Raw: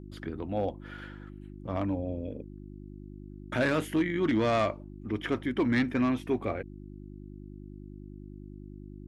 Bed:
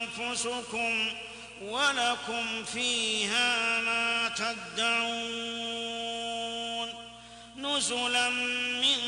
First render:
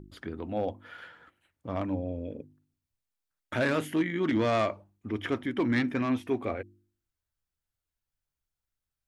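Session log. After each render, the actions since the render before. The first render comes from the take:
hum removal 50 Hz, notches 7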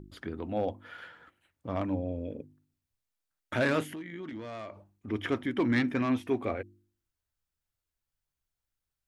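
0:03.83–0:05.08: downward compressor 5 to 1, threshold −39 dBFS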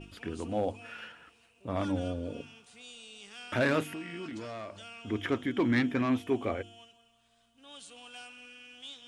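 mix in bed −20.5 dB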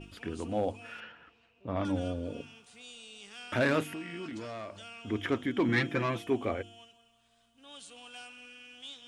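0:01.00–0:01.85: high-frequency loss of the air 170 metres
0:05.68–0:06.27: comb filter 5.9 ms, depth 83%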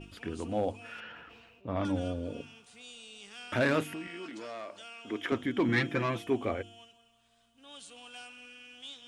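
0:00.77–0:01.93: level that may fall only so fast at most 30 dB per second
0:04.07–0:05.32: high-pass filter 300 Hz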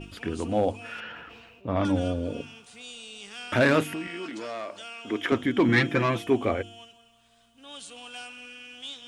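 level +6.5 dB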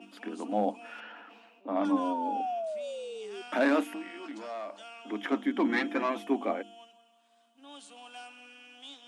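0:01.91–0:03.42: sound drawn into the spectrogram fall 380–1,100 Hz −32 dBFS
Chebyshev high-pass with heavy ripple 200 Hz, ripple 9 dB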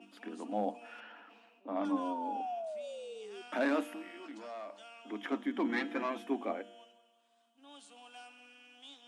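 tuned comb filter 120 Hz, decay 1.2 s, harmonics all, mix 50%

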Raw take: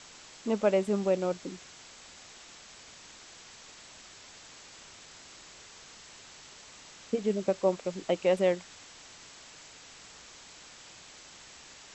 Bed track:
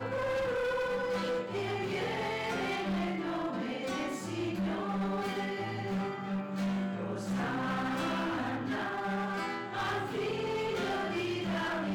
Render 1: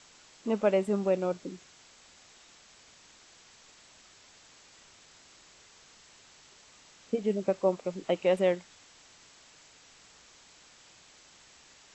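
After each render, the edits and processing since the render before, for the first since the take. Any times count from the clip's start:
noise reduction from a noise print 6 dB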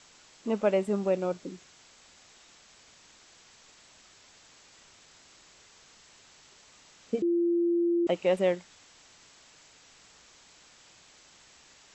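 0:07.22–0:08.07: beep over 343 Hz −22.5 dBFS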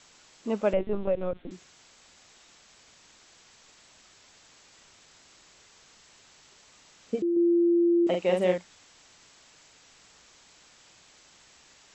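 0:00.73–0:01.51: linear-prediction vocoder at 8 kHz pitch kept
0:07.32–0:08.58: double-tracking delay 44 ms −4 dB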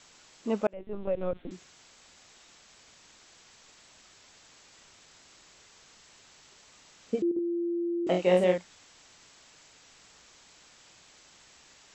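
0:00.67–0:01.31: fade in
0:07.29–0:08.44: double-tracking delay 22 ms −3 dB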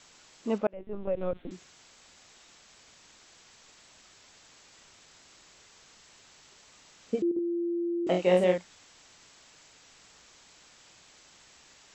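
0:00.58–0:01.17: high-frequency loss of the air 170 metres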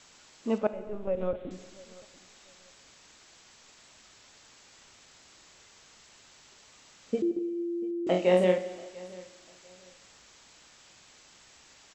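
repeating echo 690 ms, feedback 25%, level −21.5 dB
reverb whose tail is shaped and stops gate 490 ms falling, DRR 11 dB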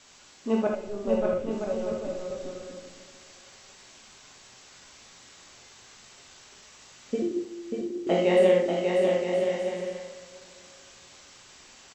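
on a send: bouncing-ball delay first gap 590 ms, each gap 0.65×, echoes 5
on the sum: reverb whose tail is shaped and stops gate 100 ms flat, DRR 0.5 dB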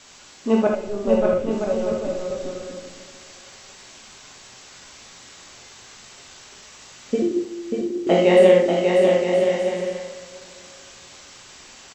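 level +7 dB

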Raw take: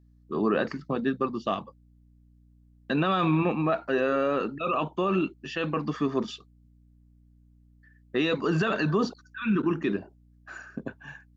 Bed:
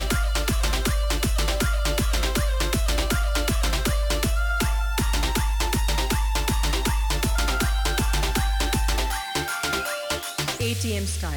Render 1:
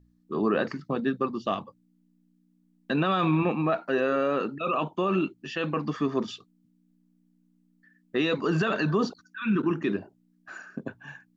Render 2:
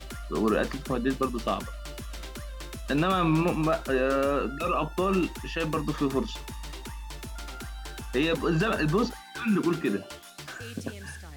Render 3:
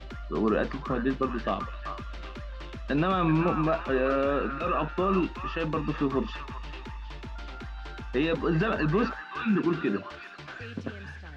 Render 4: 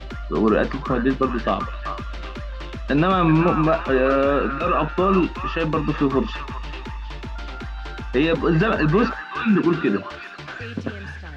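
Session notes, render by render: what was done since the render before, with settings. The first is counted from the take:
hum removal 60 Hz, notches 2
mix in bed −16 dB
high-frequency loss of the air 210 metres; echo through a band-pass that steps 386 ms, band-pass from 1,300 Hz, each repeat 0.7 octaves, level −4.5 dB
level +7.5 dB

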